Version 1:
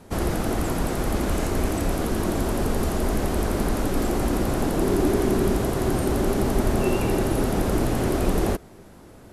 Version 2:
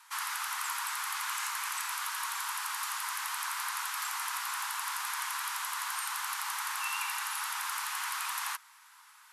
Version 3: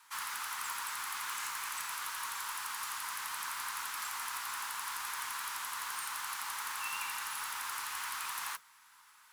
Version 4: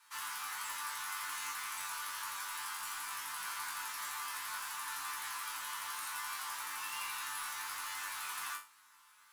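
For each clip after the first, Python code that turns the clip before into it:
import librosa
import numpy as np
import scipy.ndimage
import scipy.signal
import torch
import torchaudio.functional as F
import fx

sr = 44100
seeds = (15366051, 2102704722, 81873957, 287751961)

y1 = scipy.signal.sosfilt(scipy.signal.butter(12, 930.0, 'highpass', fs=sr, output='sos'), x)
y2 = fx.mod_noise(y1, sr, seeds[0], snr_db=14)
y2 = F.gain(torch.from_numpy(y2), -4.0).numpy()
y3 = fx.resonator_bank(y2, sr, root=43, chord='fifth', decay_s=0.31)
y3 = F.gain(torch.from_numpy(y3), 9.5).numpy()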